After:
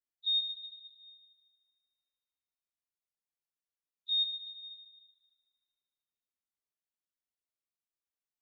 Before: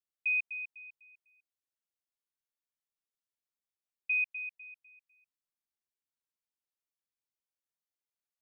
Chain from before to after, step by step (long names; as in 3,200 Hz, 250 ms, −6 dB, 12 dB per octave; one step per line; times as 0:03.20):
partials spread apart or drawn together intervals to 117%
echo machine with several playback heads 76 ms, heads all three, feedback 55%, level −14 dB